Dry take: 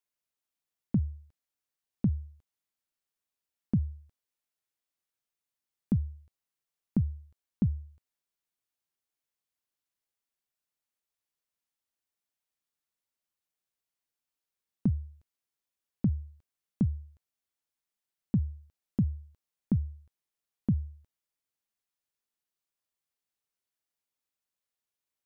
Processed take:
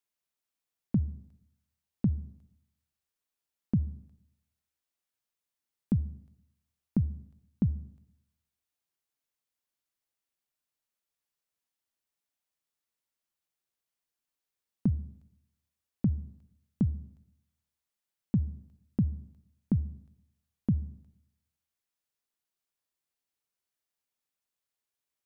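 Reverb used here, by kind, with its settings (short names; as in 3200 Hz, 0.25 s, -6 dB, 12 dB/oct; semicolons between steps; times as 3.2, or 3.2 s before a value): digital reverb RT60 0.83 s, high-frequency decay 0.85×, pre-delay 25 ms, DRR 18.5 dB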